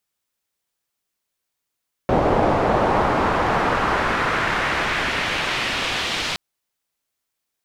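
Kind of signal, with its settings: swept filtered noise white, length 4.27 s lowpass, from 620 Hz, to 3.7 kHz, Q 1.3, exponential, gain ramp -15.5 dB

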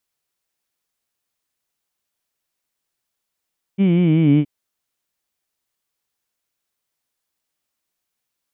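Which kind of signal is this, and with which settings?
formant-synthesis vowel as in heed, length 0.67 s, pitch 191 Hz, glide -5.5 st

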